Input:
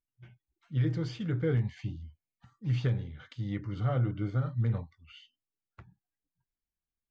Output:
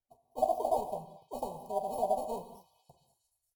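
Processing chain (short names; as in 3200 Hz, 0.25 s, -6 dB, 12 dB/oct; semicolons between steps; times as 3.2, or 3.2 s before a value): FFT order left unsorted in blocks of 64 samples; high shelf 3300 Hz +10.5 dB; comb 3.7 ms, depth 32%; sample leveller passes 1; elliptic band-stop 480–1300 Hz, stop band 40 dB; non-linear reverb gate 0.47 s flat, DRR 9 dB; speed mistake 7.5 ips tape played at 15 ips; EQ curve 110 Hz 0 dB, 270 Hz -23 dB, 400 Hz -6 dB, 770 Hz +14 dB, 1500 Hz -27 dB, 3400 Hz -21 dB; delay with a stepping band-pass 0.228 s, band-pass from 1500 Hz, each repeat 0.7 oct, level -11 dB; Opus 256 kbps 48000 Hz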